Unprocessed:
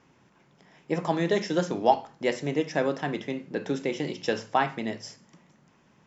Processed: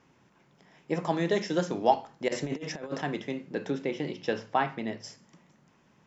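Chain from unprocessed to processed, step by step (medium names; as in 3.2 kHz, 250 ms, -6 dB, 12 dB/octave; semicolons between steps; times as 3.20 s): 2.28–3.02 s: compressor with a negative ratio -31 dBFS, ratio -0.5; 3.70–5.04 s: distance through air 120 m; trim -2 dB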